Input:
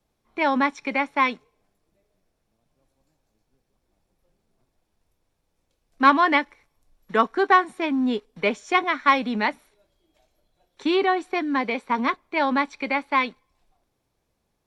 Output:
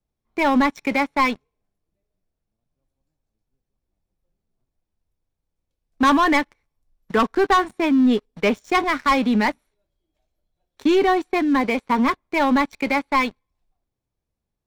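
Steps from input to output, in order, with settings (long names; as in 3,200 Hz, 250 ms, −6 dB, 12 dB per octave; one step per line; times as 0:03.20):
leveller curve on the samples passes 3
low-shelf EQ 200 Hz +10 dB
level −7.5 dB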